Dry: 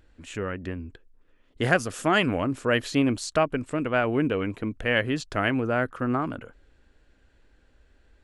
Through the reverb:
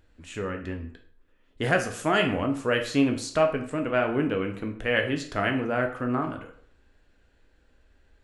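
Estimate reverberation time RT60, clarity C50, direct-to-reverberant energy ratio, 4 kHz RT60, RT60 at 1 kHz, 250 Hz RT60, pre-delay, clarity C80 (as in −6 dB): 0.55 s, 9.5 dB, 3.5 dB, 0.45 s, 0.60 s, 0.50 s, 7 ms, 13.5 dB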